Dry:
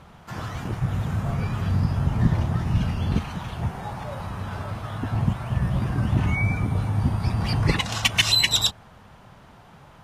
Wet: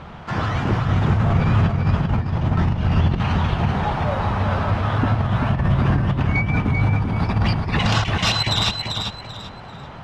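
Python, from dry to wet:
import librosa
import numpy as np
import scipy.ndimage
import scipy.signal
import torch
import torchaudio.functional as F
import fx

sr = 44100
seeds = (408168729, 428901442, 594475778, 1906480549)

p1 = scipy.signal.sosfilt(scipy.signal.butter(2, 3900.0, 'lowpass', fs=sr, output='sos'), x)
p2 = fx.hum_notches(p1, sr, base_hz=60, count=3)
p3 = fx.over_compress(p2, sr, threshold_db=-26.0, ratio=-0.5)
p4 = 10.0 ** (-16.5 / 20.0) * np.tanh(p3 / 10.0 ** (-16.5 / 20.0))
p5 = p4 + fx.echo_feedback(p4, sr, ms=391, feedback_pct=27, wet_db=-5, dry=0)
y = p5 * librosa.db_to_amplitude(8.0)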